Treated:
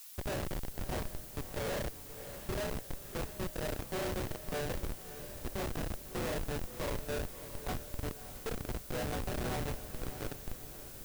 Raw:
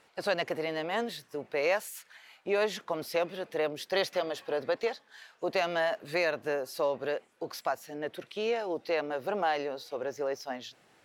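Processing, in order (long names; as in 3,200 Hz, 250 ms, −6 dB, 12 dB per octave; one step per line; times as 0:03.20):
high-pass filter 270 Hz 12 dB per octave
in parallel at +2 dB: downward compressor 6 to 1, threshold −39 dBFS, peak gain reduction 15 dB
on the sum: resonators tuned to a chord B2 minor, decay 0.73 s
comparator with hysteresis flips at −43.5 dBFS
feedback delay with all-pass diffusion 617 ms, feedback 47%, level −11 dB
background noise blue −65 dBFS
level +14 dB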